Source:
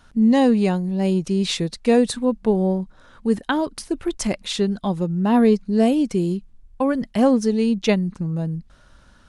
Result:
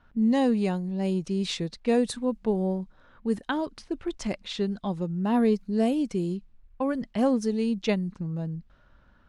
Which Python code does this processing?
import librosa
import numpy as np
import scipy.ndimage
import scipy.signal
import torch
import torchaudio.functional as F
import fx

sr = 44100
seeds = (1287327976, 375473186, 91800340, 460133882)

y = fx.quant_dither(x, sr, seeds[0], bits=12, dither='none')
y = fx.env_lowpass(y, sr, base_hz=2300.0, full_db=-15.0)
y = y * librosa.db_to_amplitude(-7.0)